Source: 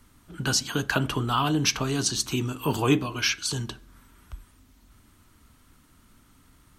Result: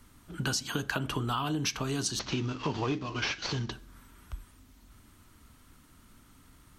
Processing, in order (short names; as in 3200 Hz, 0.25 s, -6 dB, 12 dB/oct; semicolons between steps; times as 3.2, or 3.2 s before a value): 2.19–3.72 CVSD 32 kbps; compressor 6:1, threshold -28 dBFS, peak gain reduction 11.5 dB